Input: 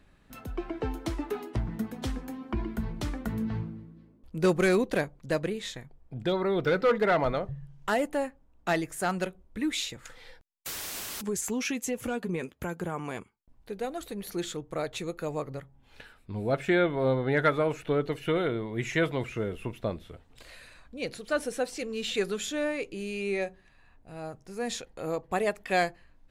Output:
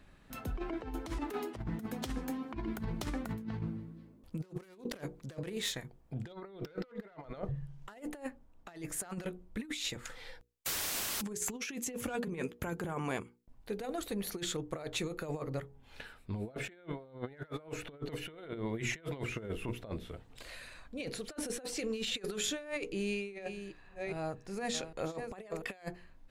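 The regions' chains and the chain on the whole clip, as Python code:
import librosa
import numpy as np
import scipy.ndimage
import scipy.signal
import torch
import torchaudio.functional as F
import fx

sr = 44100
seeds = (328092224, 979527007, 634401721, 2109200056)

y = fx.chain(x, sr, fx.self_delay(depth_ms=0.1),
    fx.highpass(hz=47.0, slope=6),
    fx.high_shelf(hz=5000.0, db=4.5), at=(1.1, 6.28))
y = fx.chain(y, sr, fx.reverse_delay(ms=402, wet_db=-10),
    fx.peak_eq(hz=13000.0, db=-7.0, octaves=0.67), at=(22.92, 25.62))
y = fx.hum_notches(y, sr, base_hz=60, count=8)
y = fx.over_compress(y, sr, threshold_db=-35.0, ratio=-0.5)
y = y * 10.0 ** (-3.5 / 20.0)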